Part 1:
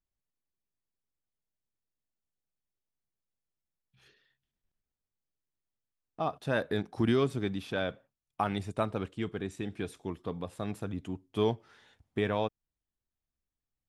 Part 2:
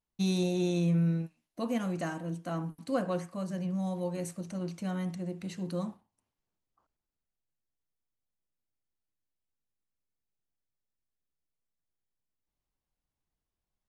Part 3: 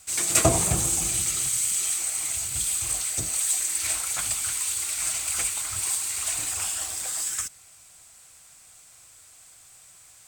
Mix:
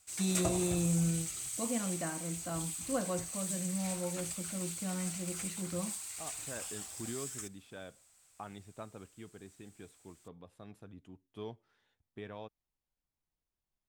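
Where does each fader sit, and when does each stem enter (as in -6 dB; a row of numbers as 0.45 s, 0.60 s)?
-15.5 dB, -4.0 dB, -14.5 dB; 0.00 s, 0.00 s, 0.00 s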